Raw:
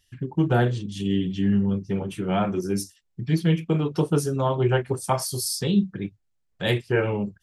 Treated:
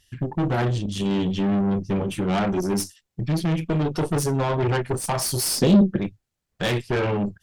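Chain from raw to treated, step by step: peak limiter -14.5 dBFS, peak gain reduction 6 dB; valve stage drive 27 dB, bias 0.55; 5.58–5.98 s: small resonant body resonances 240/360/510 Hz, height 12 dB; trim +8 dB

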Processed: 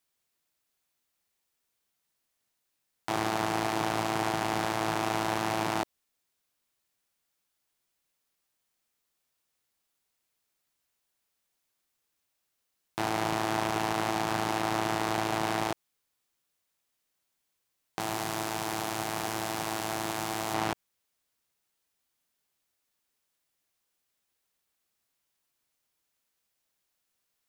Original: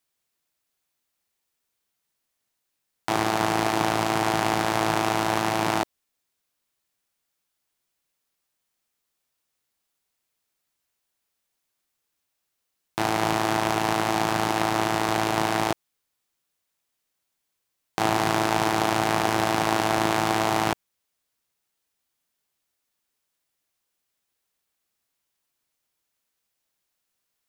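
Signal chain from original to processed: 18.00–20.54 s: treble shelf 5.5 kHz +11 dB; peak limiter -13.5 dBFS, peak gain reduction 13 dB; trim -1 dB

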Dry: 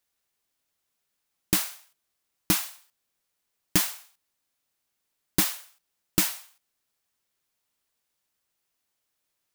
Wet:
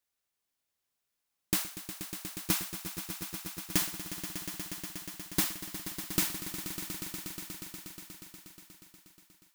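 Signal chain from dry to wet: echo with a slow build-up 120 ms, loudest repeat 5, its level -12 dB; trim -6 dB

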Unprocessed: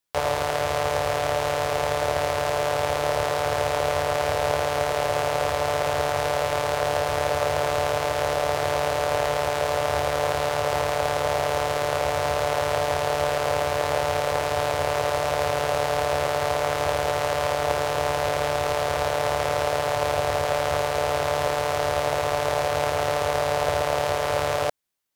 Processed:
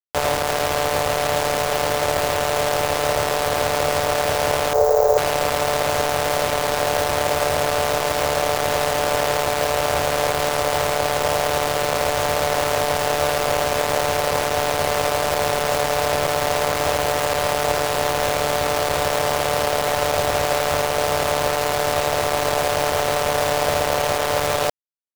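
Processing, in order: in parallel at -3 dB: peak limiter -15.5 dBFS, peak gain reduction 7.5 dB; on the sum: bit crusher 4-bit; 4.73–5.18 s: FFT filter 100 Hz 0 dB, 260 Hz -23 dB, 430 Hz +11 dB, 3 kHz -19 dB, 7 kHz -1 dB, 11 kHz -28 dB, 16 kHz +8 dB

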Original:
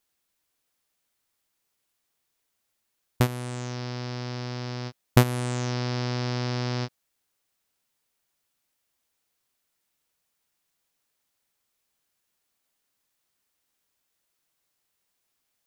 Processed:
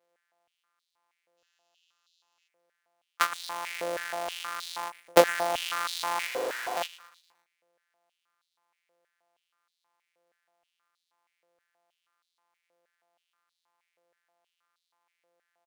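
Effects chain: sorted samples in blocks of 256 samples; 1.38–2.48 s: time-frequency box 2.5–7.5 kHz +12 dB; 6.27–6.77 s: integer overflow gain 29.5 dB; on a send: feedback delay 116 ms, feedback 51%, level -16 dB; on the sum: step-sequenced high-pass 6.3 Hz 530–3900 Hz; trim -1 dB

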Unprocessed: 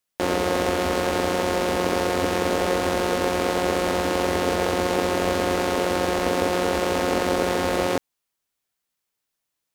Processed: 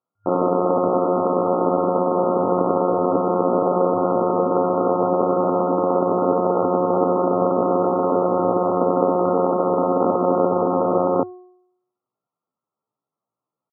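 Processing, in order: de-hum 363.5 Hz, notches 27; FFT band-pass 100–1400 Hz; tempo 0.71×; trim +5 dB

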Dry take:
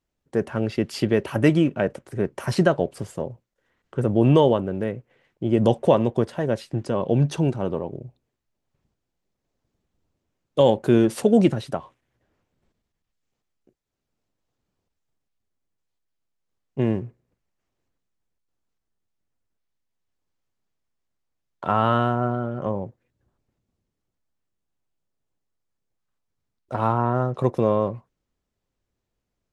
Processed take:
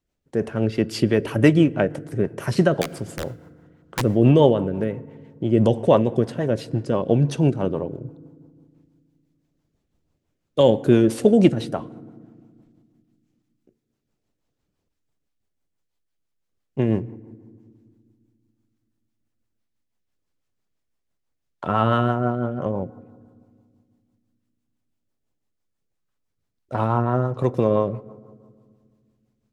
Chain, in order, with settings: 2.81–4.02 s: integer overflow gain 17.5 dB; FDN reverb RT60 1.9 s, low-frequency decay 1.5×, high-frequency decay 0.45×, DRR 18 dB; rotary cabinet horn 6 Hz; trim +3.5 dB

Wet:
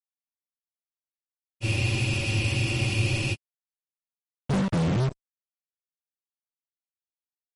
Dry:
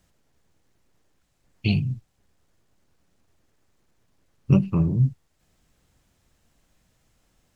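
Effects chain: fuzz box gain 40 dB, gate -36 dBFS; spectral freeze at 1.66 s, 1.68 s; trim -8.5 dB; MP3 48 kbps 48 kHz

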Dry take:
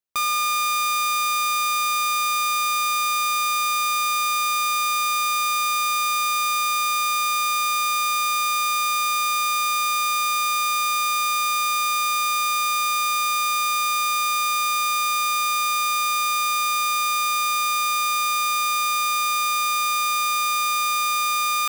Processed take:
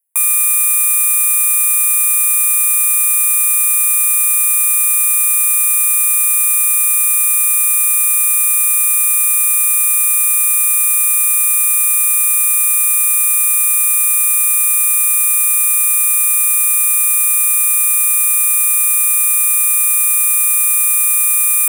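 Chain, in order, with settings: high-pass 530 Hz 24 dB/octave; resonant high shelf 7.3 kHz +13 dB, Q 3; static phaser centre 840 Hz, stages 8; trim +4.5 dB

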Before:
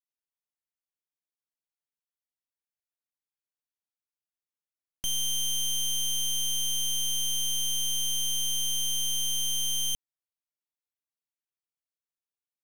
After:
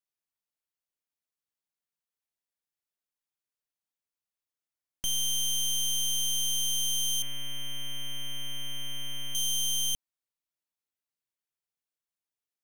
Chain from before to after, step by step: 7.22–9.35 s: resonant high shelf 3.1 kHz -13 dB, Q 3

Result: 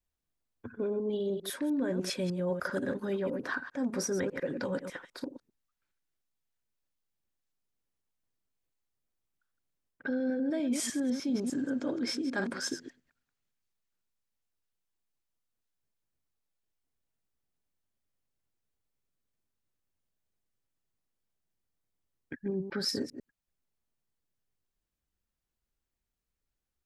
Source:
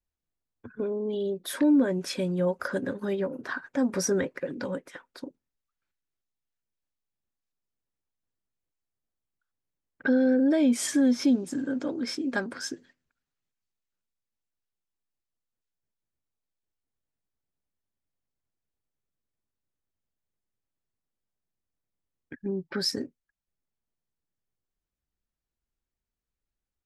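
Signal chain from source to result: chunks repeated in reverse 100 ms, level -10.5 dB; reverse; compression 6:1, threshold -30 dBFS, peak gain reduction 12 dB; reverse; trim +1 dB

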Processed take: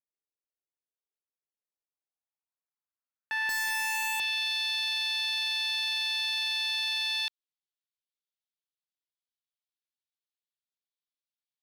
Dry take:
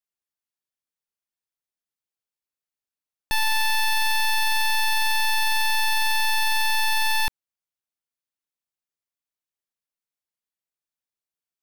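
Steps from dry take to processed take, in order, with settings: band-pass sweep 440 Hz -> 3.6 kHz, 1.49–4.52 s; 3.49–4.20 s: Schmitt trigger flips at -37.5 dBFS

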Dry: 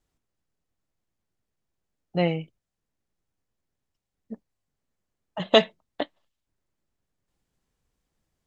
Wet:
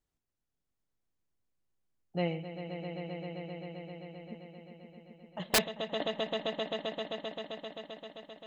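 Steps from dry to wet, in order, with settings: echo with a slow build-up 131 ms, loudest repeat 5, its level -10 dB; integer overflow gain 9 dB; trim -8.5 dB

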